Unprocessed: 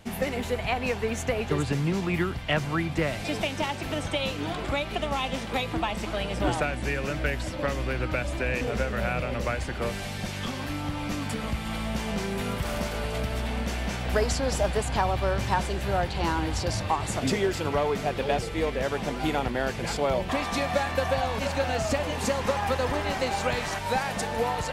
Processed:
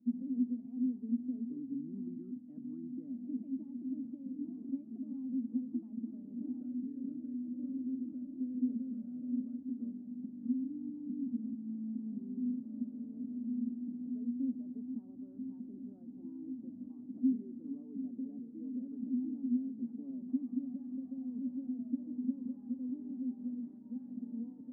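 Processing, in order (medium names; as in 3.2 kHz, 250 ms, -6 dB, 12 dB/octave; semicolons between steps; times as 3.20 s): peak limiter -21 dBFS, peak gain reduction 8 dB; Butterworth band-pass 250 Hz, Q 6.6; trim +6 dB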